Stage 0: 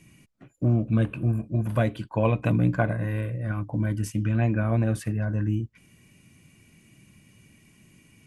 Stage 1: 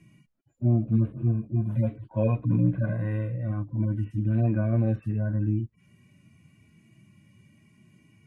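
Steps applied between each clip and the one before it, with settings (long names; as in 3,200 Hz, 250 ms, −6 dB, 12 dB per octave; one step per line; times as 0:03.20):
harmonic-percussive split with one part muted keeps harmonic
high-shelf EQ 2,800 Hz −11 dB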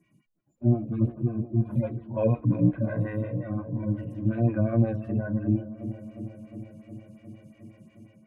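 automatic gain control gain up to 8 dB
on a send: delay with a low-pass on its return 359 ms, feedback 73%, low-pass 920 Hz, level −13 dB
on the sum: phaser with staggered stages 5.6 Hz
level −3.5 dB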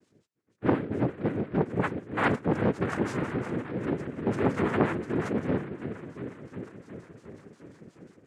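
cochlear-implant simulation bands 3
saturating transformer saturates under 830 Hz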